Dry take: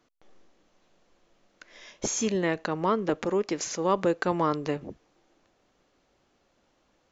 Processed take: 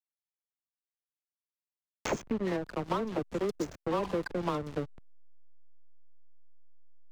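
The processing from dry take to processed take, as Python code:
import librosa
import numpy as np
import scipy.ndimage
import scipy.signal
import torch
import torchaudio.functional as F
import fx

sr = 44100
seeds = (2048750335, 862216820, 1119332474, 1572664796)

y = fx.dispersion(x, sr, late='lows', ms=94.0, hz=1400.0)
y = fx.spec_repair(y, sr, seeds[0], start_s=4.06, length_s=0.31, low_hz=670.0, high_hz=1500.0, source='both')
y = fx.backlash(y, sr, play_db=-24.0)
y = fx.band_squash(y, sr, depth_pct=100)
y = F.gain(torch.from_numpy(y), -4.0).numpy()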